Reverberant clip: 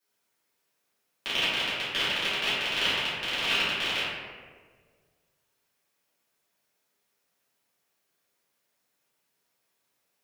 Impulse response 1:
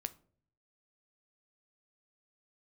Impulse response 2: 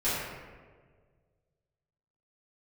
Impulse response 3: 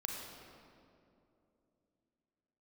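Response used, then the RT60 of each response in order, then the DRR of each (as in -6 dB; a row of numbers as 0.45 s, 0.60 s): 2; 0.50 s, 1.6 s, 2.8 s; 11.0 dB, -13.5 dB, 0.0 dB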